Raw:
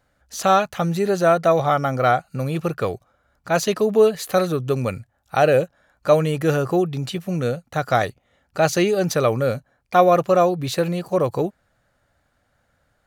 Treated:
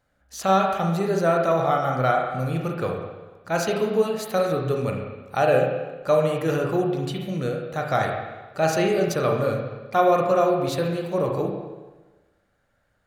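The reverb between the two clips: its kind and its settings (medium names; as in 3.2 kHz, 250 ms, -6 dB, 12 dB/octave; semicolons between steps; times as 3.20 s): spring tank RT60 1.2 s, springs 31/36/47 ms, chirp 35 ms, DRR 0.5 dB; trim -5.5 dB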